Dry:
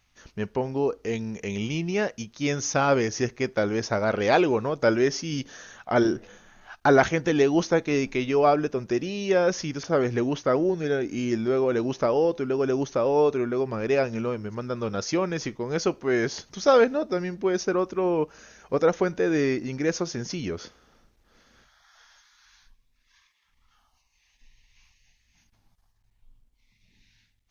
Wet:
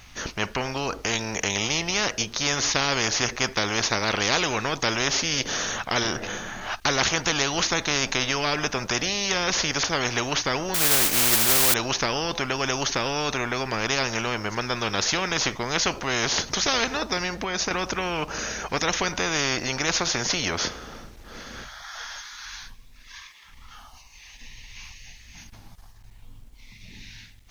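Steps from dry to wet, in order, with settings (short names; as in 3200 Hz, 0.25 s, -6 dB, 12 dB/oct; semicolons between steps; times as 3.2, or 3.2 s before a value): 10.74–11.74 modulation noise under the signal 10 dB; 17.26–17.71 compressor, threshold -28 dBFS, peak gain reduction 8.5 dB; spectral compressor 4:1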